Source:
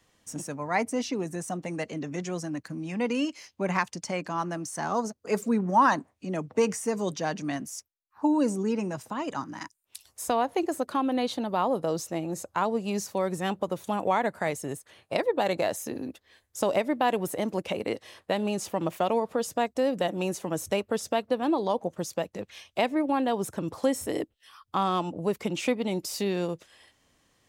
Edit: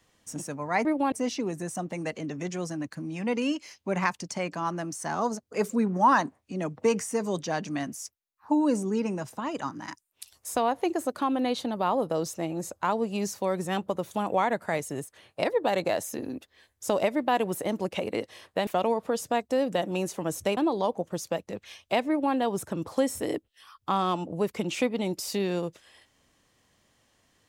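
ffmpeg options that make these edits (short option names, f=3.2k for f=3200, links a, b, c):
-filter_complex "[0:a]asplit=5[a][b][c][d][e];[a]atrim=end=0.852[f];[b]atrim=start=22.938:end=23.212[g];[c]atrim=start=0.848:end=18.402[h];[d]atrim=start=18.928:end=20.832[i];[e]atrim=start=21.428[j];[f][g]acrossfade=d=0.004:c1=hsin:c2=hsin[k];[k][h]acrossfade=d=0.004:c1=hsin:c2=hsin[l];[l][i]acrossfade=d=0.004:c1=hsin:c2=hsin[m];[m][j]acrossfade=d=0.004:c1=hsin:c2=hsin"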